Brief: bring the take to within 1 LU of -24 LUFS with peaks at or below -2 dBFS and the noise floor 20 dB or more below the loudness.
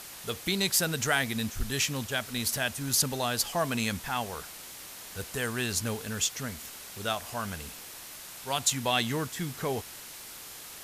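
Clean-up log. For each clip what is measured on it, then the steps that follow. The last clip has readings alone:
noise floor -45 dBFS; noise floor target -50 dBFS; loudness -30.0 LUFS; peak level -11.0 dBFS; loudness target -24.0 LUFS
-> noise print and reduce 6 dB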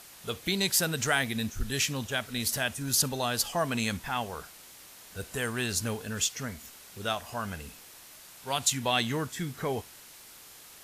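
noise floor -51 dBFS; loudness -30.0 LUFS; peak level -11.0 dBFS; loudness target -24.0 LUFS
-> trim +6 dB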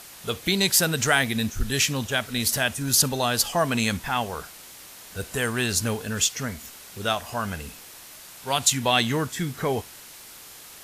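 loudness -24.0 LUFS; peak level -5.0 dBFS; noise floor -45 dBFS

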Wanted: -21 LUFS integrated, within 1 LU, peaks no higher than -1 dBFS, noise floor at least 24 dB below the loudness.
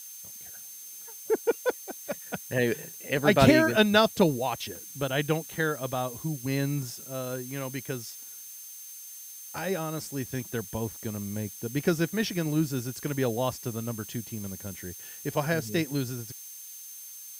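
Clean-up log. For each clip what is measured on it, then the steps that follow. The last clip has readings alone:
steady tone 6.3 kHz; tone level -46 dBFS; noise floor -44 dBFS; noise floor target -53 dBFS; loudness -29.0 LUFS; peak level -6.5 dBFS; loudness target -21.0 LUFS
-> band-stop 6.3 kHz, Q 30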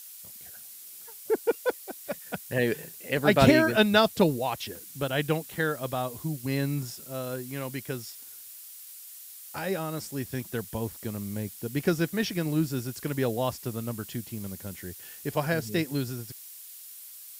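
steady tone not found; noise floor -46 dBFS; noise floor target -53 dBFS
-> noise reduction 7 dB, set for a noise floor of -46 dBFS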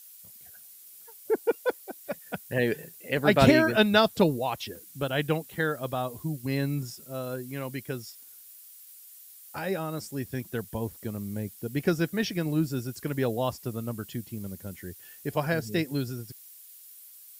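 noise floor -50 dBFS; noise floor target -53 dBFS
-> noise reduction 6 dB, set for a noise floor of -50 dBFS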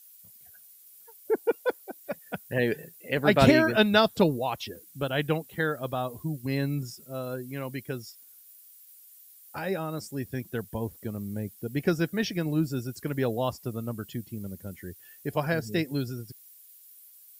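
noise floor -53 dBFS; loudness -29.0 LUFS; peak level -7.0 dBFS; loudness target -21.0 LUFS
-> trim +8 dB; peak limiter -1 dBFS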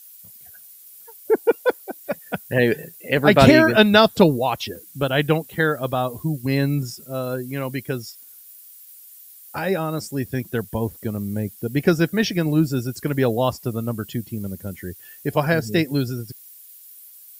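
loudness -21.0 LUFS; peak level -1.0 dBFS; noise floor -45 dBFS

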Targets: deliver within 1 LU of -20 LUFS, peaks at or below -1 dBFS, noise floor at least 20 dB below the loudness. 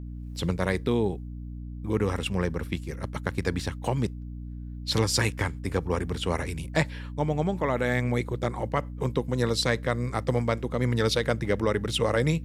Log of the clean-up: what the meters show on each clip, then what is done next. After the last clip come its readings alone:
hum 60 Hz; highest harmonic 300 Hz; hum level -35 dBFS; loudness -28.0 LUFS; peak level -9.0 dBFS; loudness target -20.0 LUFS
-> hum notches 60/120/180/240/300 Hz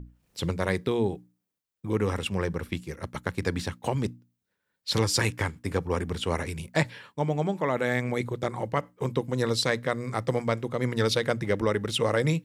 hum not found; loudness -28.5 LUFS; peak level -10.0 dBFS; loudness target -20.0 LUFS
-> trim +8.5 dB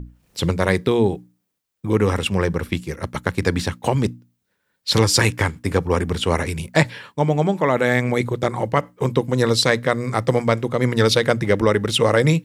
loudness -20.0 LUFS; peak level -1.5 dBFS; noise floor -73 dBFS

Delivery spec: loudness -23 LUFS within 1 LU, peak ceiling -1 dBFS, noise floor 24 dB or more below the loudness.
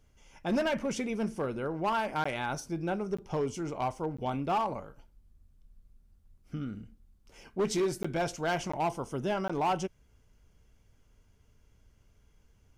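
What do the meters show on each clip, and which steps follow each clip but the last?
clipped samples 1.2%; clipping level -24.0 dBFS; dropouts 6; longest dropout 15 ms; loudness -33.0 LUFS; peak level -24.0 dBFS; loudness target -23.0 LUFS
-> clip repair -24 dBFS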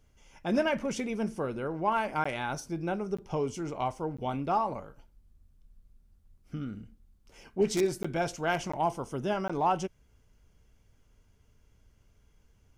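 clipped samples 0.0%; dropouts 6; longest dropout 15 ms
-> interpolate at 2.24/3.17/4.17/8.03/8.72/9.48 s, 15 ms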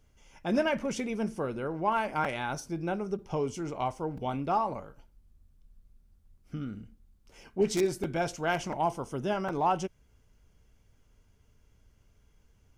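dropouts 0; loudness -31.5 LUFS; peak level -15.0 dBFS; loudness target -23.0 LUFS
-> trim +8.5 dB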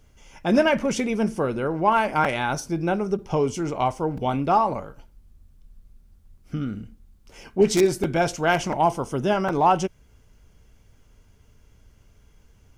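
loudness -23.0 LUFS; peak level -6.5 dBFS; noise floor -57 dBFS

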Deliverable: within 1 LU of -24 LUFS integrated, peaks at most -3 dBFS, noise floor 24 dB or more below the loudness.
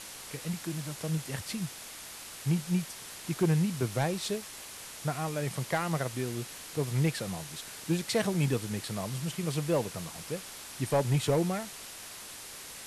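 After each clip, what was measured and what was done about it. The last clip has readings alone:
clipped samples 0.3%; clipping level -19.5 dBFS; noise floor -45 dBFS; noise floor target -57 dBFS; loudness -33.0 LUFS; peak level -19.5 dBFS; loudness target -24.0 LUFS
-> clip repair -19.5 dBFS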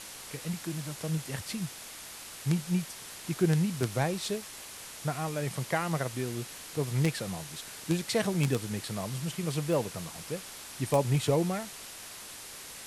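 clipped samples 0.0%; noise floor -45 dBFS; noise floor target -57 dBFS
-> noise reduction 12 dB, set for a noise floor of -45 dBFS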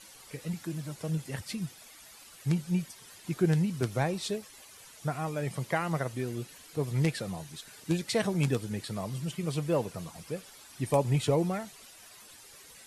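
noise floor -53 dBFS; noise floor target -56 dBFS
-> noise reduction 6 dB, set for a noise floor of -53 dBFS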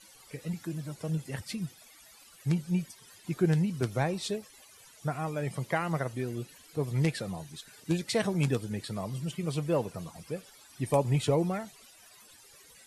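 noise floor -56 dBFS; loudness -32.0 LUFS; peak level -11.5 dBFS; loudness target -24.0 LUFS
-> trim +8 dB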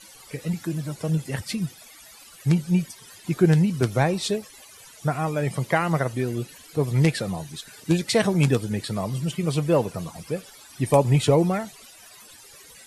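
loudness -24.0 LUFS; peak level -3.5 dBFS; noise floor -48 dBFS

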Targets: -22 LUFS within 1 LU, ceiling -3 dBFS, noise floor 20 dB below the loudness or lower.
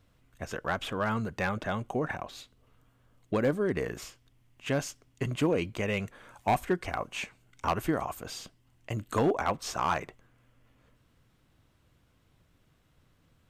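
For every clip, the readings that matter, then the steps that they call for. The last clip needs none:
clipped samples 0.3%; clipping level -19.0 dBFS; loudness -32.0 LUFS; peak level -19.0 dBFS; loudness target -22.0 LUFS
-> clip repair -19 dBFS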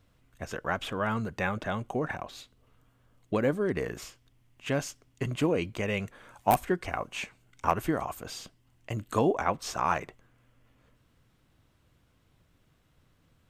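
clipped samples 0.0%; loudness -31.5 LUFS; peak level -10.0 dBFS; loudness target -22.0 LUFS
-> trim +9.5 dB; peak limiter -3 dBFS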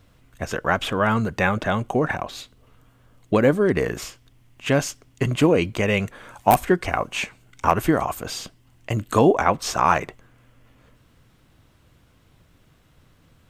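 loudness -22.0 LUFS; peak level -3.0 dBFS; noise floor -58 dBFS

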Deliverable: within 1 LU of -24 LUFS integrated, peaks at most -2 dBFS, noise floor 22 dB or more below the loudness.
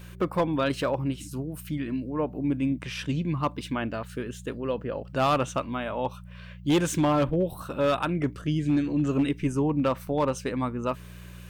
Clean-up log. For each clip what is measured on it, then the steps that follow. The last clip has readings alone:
clipped samples 0.9%; clipping level -17.5 dBFS; hum 60 Hz; highest harmonic 180 Hz; hum level -42 dBFS; loudness -28.0 LUFS; peak level -17.5 dBFS; loudness target -24.0 LUFS
-> clip repair -17.5 dBFS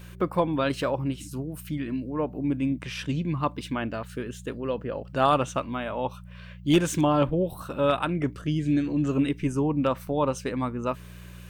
clipped samples 0.0%; hum 60 Hz; highest harmonic 180 Hz; hum level -42 dBFS
-> de-hum 60 Hz, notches 3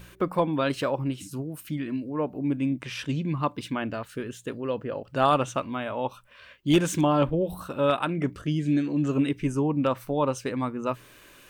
hum not found; loudness -27.5 LUFS; peak level -8.5 dBFS; loudness target -24.0 LUFS
-> trim +3.5 dB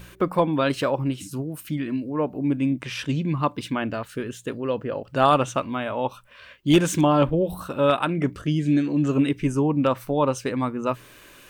loudness -24.0 LUFS; peak level -5.0 dBFS; noise floor -49 dBFS

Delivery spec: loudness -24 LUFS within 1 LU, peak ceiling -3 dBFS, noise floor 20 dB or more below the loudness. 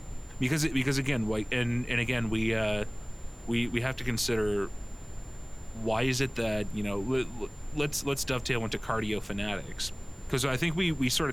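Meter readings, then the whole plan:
steady tone 7.2 kHz; tone level -53 dBFS; noise floor -44 dBFS; noise floor target -50 dBFS; loudness -30.0 LUFS; peak level -12.0 dBFS; loudness target -24.0 LUFS
-> band-stop 7.2 kHz, Q 30; noise print and reduce 6 dB; trim +6 dB

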